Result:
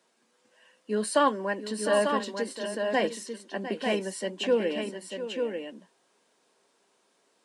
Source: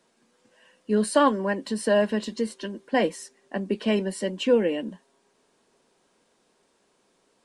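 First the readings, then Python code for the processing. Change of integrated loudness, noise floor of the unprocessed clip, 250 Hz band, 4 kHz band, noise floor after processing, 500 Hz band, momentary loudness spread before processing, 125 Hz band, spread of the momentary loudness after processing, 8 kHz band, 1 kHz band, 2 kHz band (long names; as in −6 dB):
−4.0 dB, −68 dBFS, −6.5 dB, −0.5 dB, −70 dBFS, −2.5 dB, 13 LU, can't be measured, 12 LU, −0.5 dB, −1.0 dB, −0.5 dB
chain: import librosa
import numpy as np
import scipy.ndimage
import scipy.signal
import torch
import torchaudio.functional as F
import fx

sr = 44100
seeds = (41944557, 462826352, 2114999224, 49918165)

y = scipy.signal.sosfilt(scipy.signal.butter(2, 100.0, 'highpass', fs=sr, output='sos'), x)
y = fx.low_shelf(y, sr, hz=250.0, db=-11.0)
y = fx.echo_multitap(y, sr, ms=(702, 894), db=(-12.0, -6.0))
y = y * librosa.db_to_amplitude(-1.5)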